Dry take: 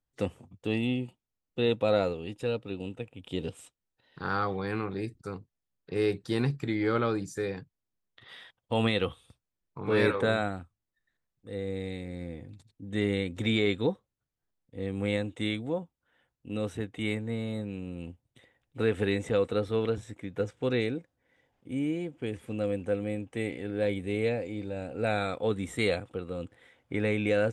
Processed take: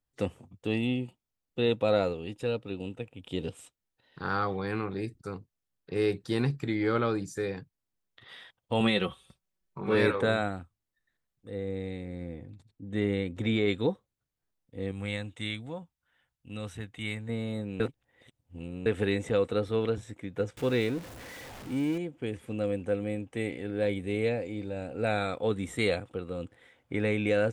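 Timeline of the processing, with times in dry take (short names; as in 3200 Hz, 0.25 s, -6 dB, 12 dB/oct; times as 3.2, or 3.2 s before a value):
8.8–9.95 comb 5.3 ms
11.5–13.68 high shelf 2800 Hz -8 dB
14.91–17.29 bell 380 Hz -10.5 dB 1.9 oct
17.8–18.86 reverse
20.57–21.98 zero-crossing step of -39 dBFS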